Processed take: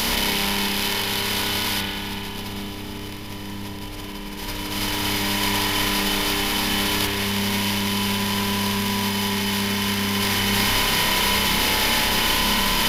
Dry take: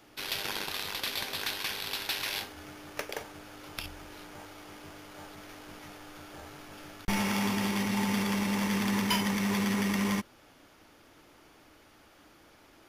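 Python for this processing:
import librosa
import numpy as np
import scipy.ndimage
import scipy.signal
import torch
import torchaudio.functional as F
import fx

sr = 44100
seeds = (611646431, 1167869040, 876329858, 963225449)

y = fx.bin_compress(x, sr, power=0.2)
y = fx.low_shelf(y, sr, hz=490.0, db=12.0, at=(1.81, 4.38))
y = fx.echo_feedback(y, sr, ms=332, feedback_pct=37, wet_db=-4.5)
y = fx.over_compress(y, sr, threshold_db=-28.0, ratio=-1.0)
y = fx.high_shelf(y, sr, hz=2700.0, db=10.0)
y = fx.rev_spring(y, sr, rt60_s=2.2, pass_ms=(30,), chirp_ms=70, drr_db=-2.0)
y = y * 10.0 ** (-3.5 / 20.0)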